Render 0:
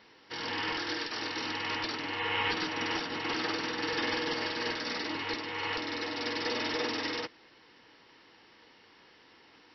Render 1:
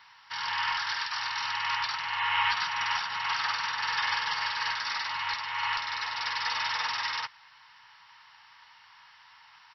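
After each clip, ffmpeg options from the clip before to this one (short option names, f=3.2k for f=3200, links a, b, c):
-af "firequalizer=gain_entry='entry(130,0);entry(320,-27);entry(910,14);entry(2200,9)':delay=0.05:min_phase=1,volume=-6dB"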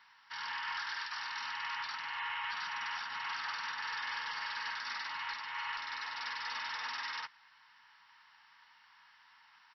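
-af "alimiter=limit=-22.5dB:level=0:latency=1:release=25,equalizer=f=100:t=o:w=0.67:g=-8,equalizer=f=250:t=o:w=0.67:g=7,equalizer=f=1.6k:t=o:w=0.67:g=4,volume=-9dB"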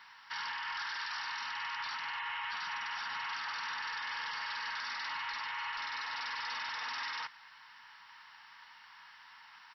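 -af "alimiter=level_in=14dB:limit=-24dB:level=0:latency=1:release=11,volume=-14dB,volume=7dB"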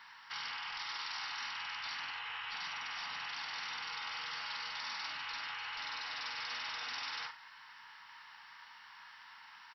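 -filter_complex "[0:a]asplit=2[a][b];[b]aecho=0:1:42|74:0.355|0.188[c];[a][c]amix=inputs=2:normalize=0,afftfilt=real='re*lt(hypot(re,im),0.0355)':imag='im*lt(hypot(re,im),0.0355)':win_size=1024:overlap=0.75"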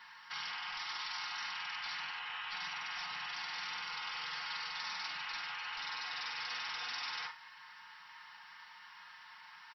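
-af "aecho=1:1:5.6:0.63,volume=-1dB"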